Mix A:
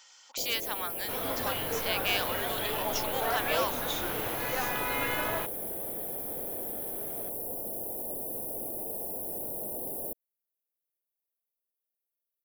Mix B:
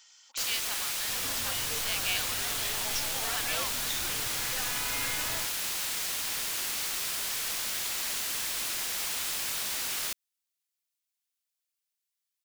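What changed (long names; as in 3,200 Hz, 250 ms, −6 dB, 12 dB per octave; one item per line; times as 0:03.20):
first sound: remove inverse Chebyshev band-stop filter 1,400–6,100 Hz, stop band 50 dB
master: add parametric band 510 Hz −11 dB 2.9 octaves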